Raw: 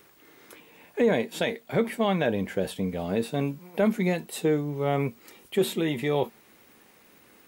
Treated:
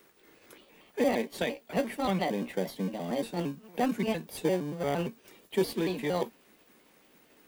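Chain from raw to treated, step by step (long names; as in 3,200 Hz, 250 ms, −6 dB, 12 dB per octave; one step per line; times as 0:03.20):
pitch shifter gated in a rhythm +3.5 semitones, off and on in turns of 115 ms
Butterworth high-pass 150 Hz 48 dB per octave
in parallel at −9.5 dB: decimation without filtering 33×
on the sum: level −5 dB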